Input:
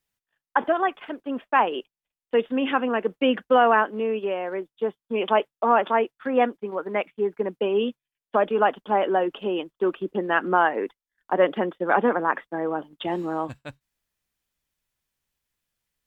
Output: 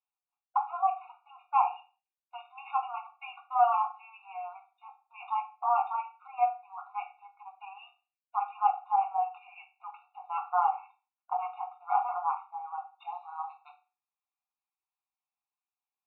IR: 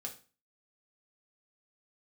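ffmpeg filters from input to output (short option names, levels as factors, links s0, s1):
-filter_complex "[0:a]asettb=1/sr,asplit=3[s0][s1][s2];[s0]atrim=end=9.374[s3];[s1]atrim=start=9.37:end=9.95,asetpts=PTS-STARTPTS,afade=t=in:d=0.004:c=qsin,afade=t=out:st=0.576:d=0.004:c=qsin,afreqshift=-270[s4];[s2]atrim=start=9.946[s5];[s3][s4]acrossfade=d=0.004:c1=hsin:c2=qsin[s6];[s6][s5]acrossfade=d=0.004:c1=qsin:c2=hsin,highpass=f=370:w=0.5412,highpass=f=370:w=1.3066,equalizer=f=500:t=q:w=4:g=5,equalizer=f=710:t=q:w=4:g=8,equalizer=f=1000:t=q:w=4:g=9,lowpass=f=3300:w=0.5412,lowpass=f=3300:w=1.3066[s7];[1:a]atrim=start_sample=2205[s8];[s7][s8]afir=irnorm=-1:irlink=0,afftfilt=real='re*eq(mod(floor(b*sr/1024/720),2),1)':imag='im*eq(mod(floor(b*sr/1024/720),2),1)':win_size=1024:overlap=0.75,volume=0.355"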